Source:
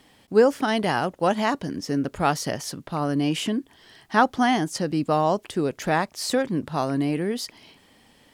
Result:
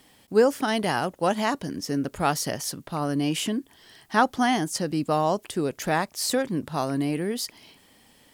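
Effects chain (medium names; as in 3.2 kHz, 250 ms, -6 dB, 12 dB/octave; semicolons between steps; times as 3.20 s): treble shelf 7.7 kHz +10.5 dB; trim -2 dB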